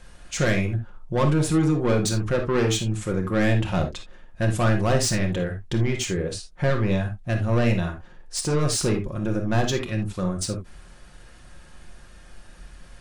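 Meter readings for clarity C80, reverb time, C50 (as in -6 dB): 18.5 dB, no single decay rate, 8.0 dB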